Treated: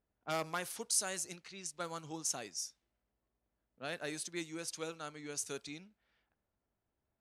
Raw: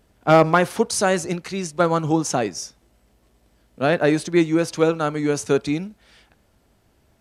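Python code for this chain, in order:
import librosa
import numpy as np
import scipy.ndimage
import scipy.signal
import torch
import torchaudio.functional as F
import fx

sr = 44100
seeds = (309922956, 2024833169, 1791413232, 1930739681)

y = scipy.signal.lfilter([1.0, -0.9], [1.0], x)
y = fx.env_lowpass(y, sr, base_hz=1200.0, full_db=-30.5)
y = F.gain(torch.from_numpy(y), -6.5).numpy()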